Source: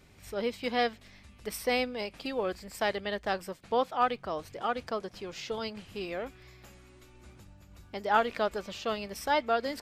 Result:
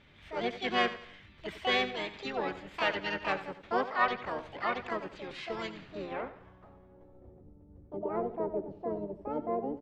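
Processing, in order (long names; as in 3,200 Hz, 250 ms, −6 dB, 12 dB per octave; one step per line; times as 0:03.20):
low-pass filter sweep 2,200 Hz → 380 Hz, 0:05.65–0:07.49
repeating echo 87 ms, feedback 39%, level −13 dB
pitch-shifted copies added −12 semitones −15 dB, −4 semitones −7 dB, +7 semitones −2 dB
level −5.5 dB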